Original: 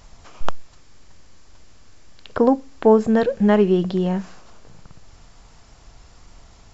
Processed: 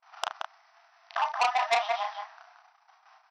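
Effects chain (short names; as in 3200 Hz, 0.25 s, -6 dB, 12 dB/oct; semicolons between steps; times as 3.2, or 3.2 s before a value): median filter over 15 samples; gate -44 dBFS, range -29 dB; in parallel at -6.5 dB: hard clip -13 dBFS, distortion -12 dB; on the sum: granular stretch 0.55×, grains 54 ms; doubler 36 ms -5.5 dB; on a send: loudspeakers at several distances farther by 16 m -8 dB, 68 m -6 dB; on the sum: varispeed +12%; brick-wall FIR band-pass 640–6100 Hz; core saturation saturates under 3400 Hz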